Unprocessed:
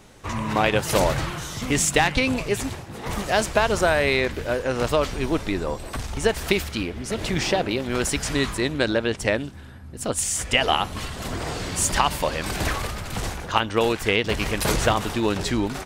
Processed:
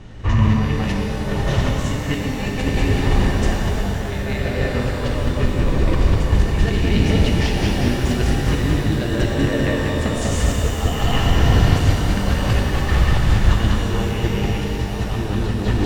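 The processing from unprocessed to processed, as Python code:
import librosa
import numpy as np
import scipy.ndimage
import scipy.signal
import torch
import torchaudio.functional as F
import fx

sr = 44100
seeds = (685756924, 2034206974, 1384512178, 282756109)

p1 = fx.low_shelf(x, sr, hz=130.0, db=7.0)
p2 = fx.small_body(p1, sr, hz=(1800.0, 2900.0), ring_ms=45, db=11)
p3 = p2 + fx.echo_feedback(p2, sr, ms=195, feedback_pct=56, wet_db=-4, dry=0)
p4 = fx.over_compress(p3, sr, threshold_db=-24.0, ratio=-0.5)
p5 = scipy.signal.sosfilt(scipy.signal.butter(2, 4800.0, 'lowpass', fs=sr, output='sos'), p4)
p6 = fx.low_shelf(p5, sr, hz=260.0, db=10.5)
p7 = fx.rev_shimmer(p6, sr, seeds[0], rt60_s=3.3, semitones=12, shimmer_db=-8, drr_db=-0.5)
y = p7 * librosa.db_to_amplitude(-3.5)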